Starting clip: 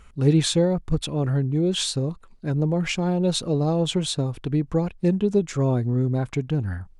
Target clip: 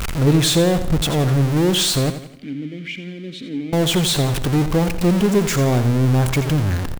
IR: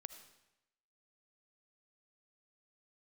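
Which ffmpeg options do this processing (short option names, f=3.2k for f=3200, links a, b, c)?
-filter_complex "[0:a]aeval=exprs='val(0)+0.5*0.0841*sgn(val(0))':c=same,asettb=1/sr,asplit=3[a][b][c];[a]atrim=end=2.104[d];[b]atrim=start=2.1:end=3.73,asetpts=PTS-STARTPTS,afade=t=in:d=0.004:c=qsin,afade=t=out:st=1.626:d=0.004:c=qsin,asplit=3[e][f][g];[e]bandpass=f=270:t=q:w=8,volume=0dB[h];[f]bandpass=f=2.29k:t=q:w=8,volume=-6dB[i];[g]bandpass=f=3.01k:t=q:w=8,volume=-9dB[j];[h][i][j]amix=inputs=3:normalize=0[k];[c]atrim=start=3.726[l];[d][k]acrossfade=d=0.004:c1=hsin:c2=qsin[m];[m][l]acrossfade=d=0.004:c1=qsin:c2=hsin,asplit=2[n][o];[o]asoftclip=type=tanh:threshold=-22dB,volume=-6dB[p];[n][p]amix=inputs=2:normalize=0,aecho=1:1:86|172|258|344|430:0.282|0.124|0.0546|0.024|0.0106"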